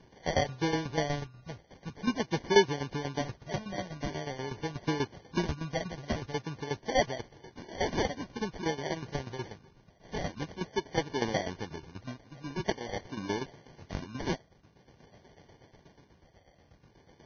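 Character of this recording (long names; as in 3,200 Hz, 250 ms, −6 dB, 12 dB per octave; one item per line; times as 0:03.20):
phaser sweep stages 4, 0.47 Hz, lowest notch 350–2,800 Hz
aliases and images of a low sample rate 1,300 Hz, jitter 0%
tremolo saw down 8.2 Hz, depth 80%
Ogg Vorbis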